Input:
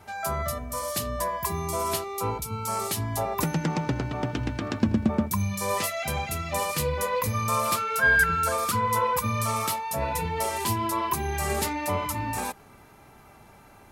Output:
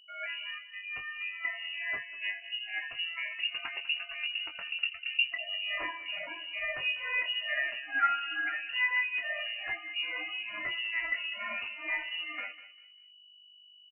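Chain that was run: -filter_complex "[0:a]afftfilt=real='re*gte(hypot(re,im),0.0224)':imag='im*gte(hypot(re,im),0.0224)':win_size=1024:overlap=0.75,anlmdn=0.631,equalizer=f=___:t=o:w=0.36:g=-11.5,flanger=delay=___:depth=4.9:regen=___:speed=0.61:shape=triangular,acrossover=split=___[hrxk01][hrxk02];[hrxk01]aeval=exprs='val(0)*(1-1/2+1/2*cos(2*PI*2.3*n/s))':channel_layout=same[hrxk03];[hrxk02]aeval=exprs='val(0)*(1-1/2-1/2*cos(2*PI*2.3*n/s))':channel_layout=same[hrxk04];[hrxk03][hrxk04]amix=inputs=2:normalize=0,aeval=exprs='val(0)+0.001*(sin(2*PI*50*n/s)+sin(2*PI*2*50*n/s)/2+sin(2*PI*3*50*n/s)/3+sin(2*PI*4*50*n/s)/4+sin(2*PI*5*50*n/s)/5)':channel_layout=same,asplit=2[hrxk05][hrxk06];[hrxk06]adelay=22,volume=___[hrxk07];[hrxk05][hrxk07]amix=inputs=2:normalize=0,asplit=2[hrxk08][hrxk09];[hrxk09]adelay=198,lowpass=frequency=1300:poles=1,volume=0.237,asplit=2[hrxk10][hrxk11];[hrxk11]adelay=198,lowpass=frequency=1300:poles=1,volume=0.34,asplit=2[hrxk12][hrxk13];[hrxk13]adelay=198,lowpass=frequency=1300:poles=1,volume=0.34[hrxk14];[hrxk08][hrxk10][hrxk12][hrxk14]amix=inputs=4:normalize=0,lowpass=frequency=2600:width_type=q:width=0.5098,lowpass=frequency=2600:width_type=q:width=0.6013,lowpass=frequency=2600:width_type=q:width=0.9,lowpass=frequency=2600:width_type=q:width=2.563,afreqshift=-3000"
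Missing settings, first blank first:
61, 6.1, 21, 570, 0.473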